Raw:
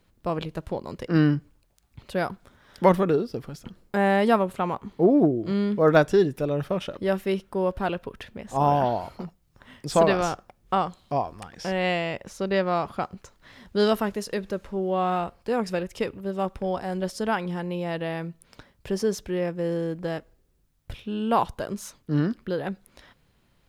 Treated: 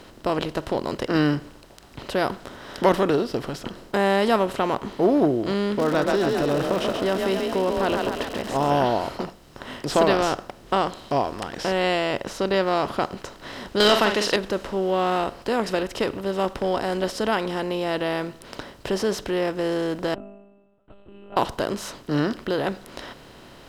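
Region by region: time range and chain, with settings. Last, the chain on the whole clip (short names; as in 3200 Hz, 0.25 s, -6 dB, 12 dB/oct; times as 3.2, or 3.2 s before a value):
5.78–8.69 frequency-shifting echo 0.134 s, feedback 45%, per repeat +32 Hz, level -7 dB + compressor 3:1, threshold -21 dBFS + crackle 210/s -36 dBFS
13.8–14.36 bell 3600 Hz +11.5 dB 1.8 oct + overdrive pedal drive 14 dB, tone 3400 Hz, clips at -7.5 dBFS + doubler 48 ms -9 dB
20.14–21.37 octave resonator E, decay 0.75 s + monotone LPC vocoder at 8 kHz 200 Hz
whole clip: per-bin compression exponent 0.6; bell 170 Hz -7.5 dB 0.26 oct; gain -2 dB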